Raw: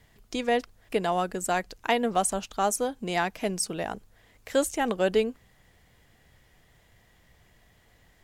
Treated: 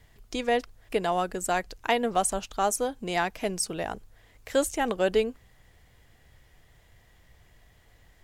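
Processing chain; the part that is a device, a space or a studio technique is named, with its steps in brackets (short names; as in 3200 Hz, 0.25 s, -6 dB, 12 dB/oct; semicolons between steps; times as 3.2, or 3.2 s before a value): low shelf boost with a cut just above (low shelf 100 Hz +6 dB; bell 200 Hz -4 dB 0.79 oct)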